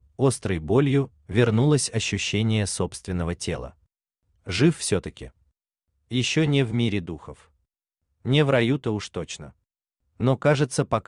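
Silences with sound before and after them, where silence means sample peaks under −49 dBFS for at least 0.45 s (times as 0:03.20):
0:03.72–0:04.46
0:05.30–0:06.11
0:07.45–0:08.25
0:09.52–0:10.20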